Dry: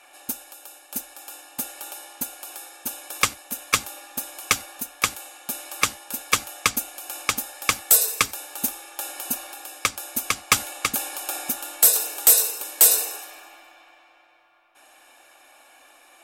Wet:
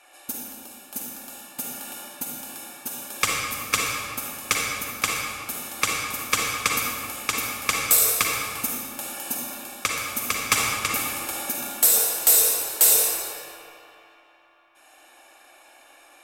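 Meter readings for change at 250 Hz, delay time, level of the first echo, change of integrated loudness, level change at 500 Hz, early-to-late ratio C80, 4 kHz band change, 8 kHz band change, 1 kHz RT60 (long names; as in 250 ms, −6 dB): +1.5 dB, no echo audible, no echo audible, 0.0 dB, +2.0 dB, 1.0 dB, 0.0 dB, 0.0 dB, 2.1 s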